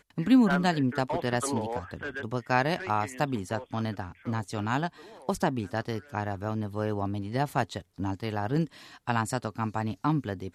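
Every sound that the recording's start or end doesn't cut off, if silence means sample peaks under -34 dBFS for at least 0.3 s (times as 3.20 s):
5.29–8.65 s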